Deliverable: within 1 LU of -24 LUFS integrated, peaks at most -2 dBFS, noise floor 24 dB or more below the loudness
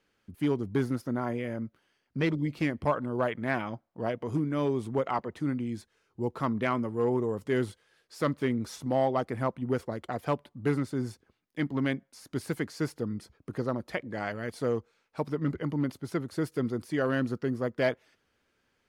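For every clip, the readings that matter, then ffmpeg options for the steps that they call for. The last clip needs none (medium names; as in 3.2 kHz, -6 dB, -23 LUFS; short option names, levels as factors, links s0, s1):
loudness -31.5 LUFS; peak level -15.0 dBFS; loudness target -24.0 LUFS
-> -af "volume=2.37"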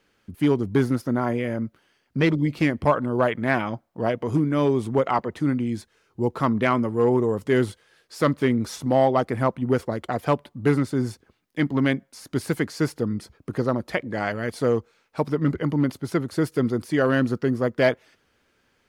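loudness -24.0 LUFS; peak level -7.5 dBFS; noise floor -68 dBFS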